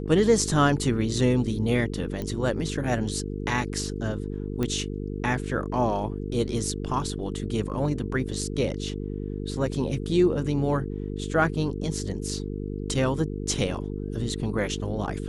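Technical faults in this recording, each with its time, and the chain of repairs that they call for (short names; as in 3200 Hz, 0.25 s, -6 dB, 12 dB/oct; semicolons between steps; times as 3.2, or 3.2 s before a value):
buzz 50 Hz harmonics 9 -32 dBFS
2.22 pop -19 dBFS
4.63 pop -14 dBFS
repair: de-click; de-hum 50 Hz, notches 9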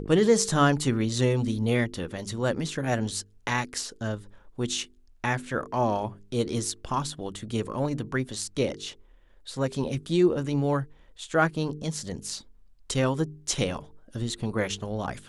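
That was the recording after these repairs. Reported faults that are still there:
none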